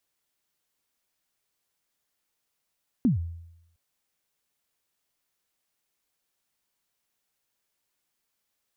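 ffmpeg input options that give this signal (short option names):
-f lavfi -i "aevalsrc='0.158*pow(10,-3*t/0.83)*sin(2*PI*(280*0.131/log(84/280)*(exp(log(84/280)*min(t,0.131)/0.131)-1)+84*max(t-0.131,0)))':d=0.71:s=44100"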